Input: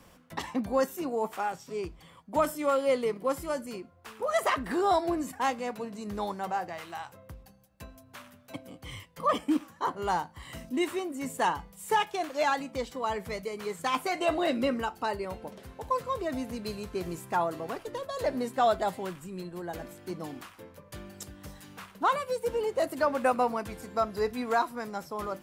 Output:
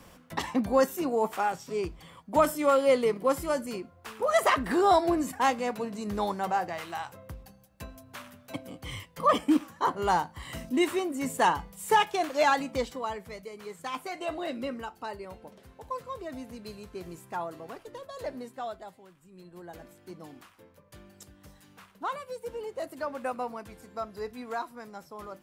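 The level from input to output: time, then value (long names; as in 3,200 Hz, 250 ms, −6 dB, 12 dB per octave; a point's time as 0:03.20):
0:12.81 +3.5 dB
0:13.24 −6.5 dB
0:18.27 −6.5 dB
0:19.09 −19 dB
0:19.58 −7.5 dB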